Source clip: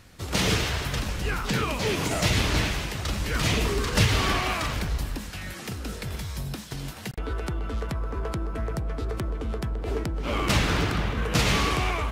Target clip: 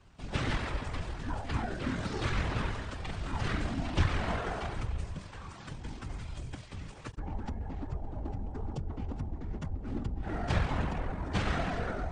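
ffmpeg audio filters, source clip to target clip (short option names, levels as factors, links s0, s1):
-af "afftfilt=real='hypot(re,im)*cos(2*PI*random(0))':imag='hypot(re,im)*sin(2*PI*random(1))':win_size=512:overlap=0.75,highshelf=f=2400:g=-5.5,asetrate=26990,aresample=44100,atempo=1.63392"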